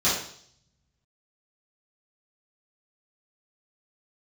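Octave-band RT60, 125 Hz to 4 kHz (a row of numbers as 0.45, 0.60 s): 1.6, 0.65, 0.60, 0.55, 0.55, 0.70 s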